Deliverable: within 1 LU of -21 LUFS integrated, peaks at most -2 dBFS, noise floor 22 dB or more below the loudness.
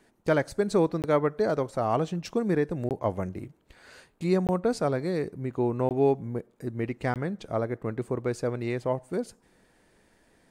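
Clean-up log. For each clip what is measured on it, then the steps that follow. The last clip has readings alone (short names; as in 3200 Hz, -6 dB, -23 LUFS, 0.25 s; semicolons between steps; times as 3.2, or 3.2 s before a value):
dropouts 5; longest dropout 18 ms; loudness -28.5 LUFS; peak -12.5 dBFS; loudness target -21.0 LUFS
-> interpolate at 1.02/2.89/4.47/5.89/7.14, 18 ms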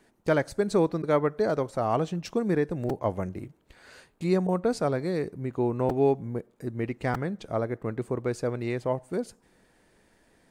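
dropouts 0; loudness -28.5 LUFS; peak -12.5 dBFS; loudness target -21.0 LUFS
-> gain +7.5 dB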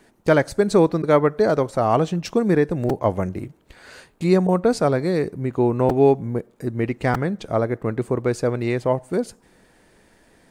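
loudness -21.0 LUFS; peak -5.0 dBFS; noise floor -58 dBFS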